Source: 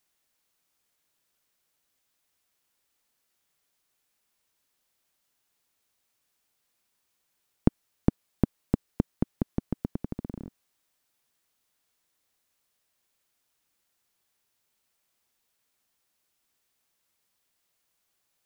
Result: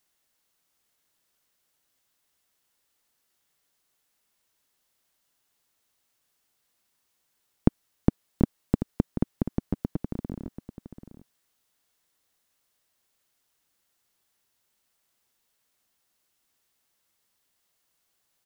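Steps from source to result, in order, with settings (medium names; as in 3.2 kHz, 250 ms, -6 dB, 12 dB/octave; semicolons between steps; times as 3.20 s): band-stop 2.4 kHz, Q 23; delay 736 ms -11 dB; trim +1.5 dB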